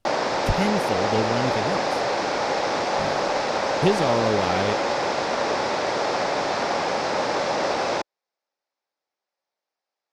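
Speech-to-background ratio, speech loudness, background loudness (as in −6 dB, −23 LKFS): −3.0 dB, −27.0 LKFS, −24.0 LKFS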